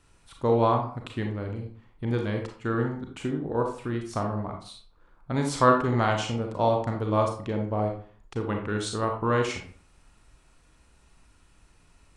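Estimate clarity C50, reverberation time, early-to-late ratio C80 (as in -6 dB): 5.5 dB, 0.45 s, 10.5 dB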